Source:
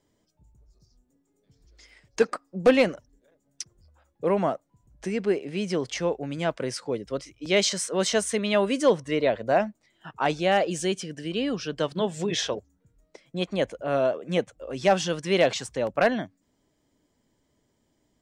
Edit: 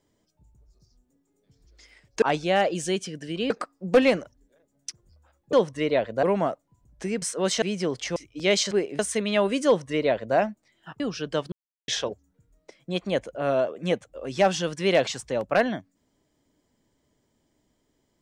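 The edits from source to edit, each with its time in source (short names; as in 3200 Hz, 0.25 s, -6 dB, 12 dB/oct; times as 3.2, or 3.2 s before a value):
5.24–5.52 swap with 7.77–8.17
6.06–7.22 cut
8.84–9.54 copy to 4.25
10.18–11.46 move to 2.22
11.98–12.34 mute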